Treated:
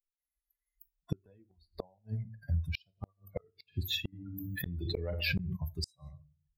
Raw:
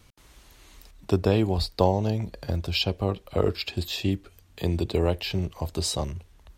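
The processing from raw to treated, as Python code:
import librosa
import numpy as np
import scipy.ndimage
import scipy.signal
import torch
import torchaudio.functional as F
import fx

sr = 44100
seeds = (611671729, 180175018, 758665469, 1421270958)

y = fx.bin_expand(x, sr, power=3.0)
y = fx.room_shoebox(y, sr, seeds[0], volume_m3=150.0, walls='furnished', distance_m=0.33)
y = fx.gate_flip(y, sr, shuts_db=-27.0, range_db=-40)
y = fx.high_shelf(y, sr, hz=4200.0, db=11.0, at=(2.86, 3.31))
y = fx.pre_swell(y, sr, db_per_s=21.0, at=(4.12, 5.55), fade=0.02)
y = y * librosa.db_to_amplitude(5.0)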